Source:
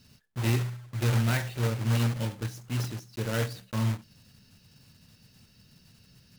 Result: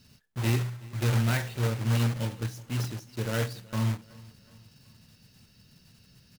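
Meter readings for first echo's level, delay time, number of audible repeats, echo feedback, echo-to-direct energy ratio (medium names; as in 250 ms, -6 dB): -22.5 dB, 373 ms, 2, 48%, -21.5 dB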